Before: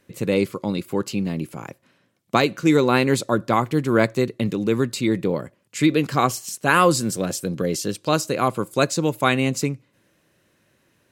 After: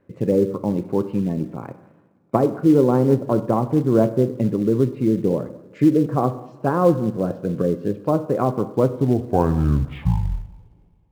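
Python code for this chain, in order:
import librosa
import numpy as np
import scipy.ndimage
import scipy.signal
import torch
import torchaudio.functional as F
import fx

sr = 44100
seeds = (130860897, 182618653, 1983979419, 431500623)

p1 = fx.tape_stop_end(x, sr, length_s=2.52)
p2 = fx.spec_gate(p1, sr, threshold_db=-30, keep='strong')
p3 = fx.env_lowpass_down(p2, sr, base_hz=790.0, full_db=-17.0)
p4 = scipy.signal.sosfilt(scipy.signal.butter(2, 1100.0, 'lowpass', fs=sr, output='sos'), p3)
p5 = p4 + fx.echo_feedback(p4, sr, ms=201, feedback_pct=30, wet_db=-23, dry=0)
p6 = fx.rev_double_slope(p5, sr, seeds[0], early_s=0.76, late_s=2.6, knee_db=-18, drr_db=10.0)
p7 = fx.quant_float(p6, sr, bits=2)
y = p6 + F.gain(torch.from_numpy(p7), -9.5).numpy()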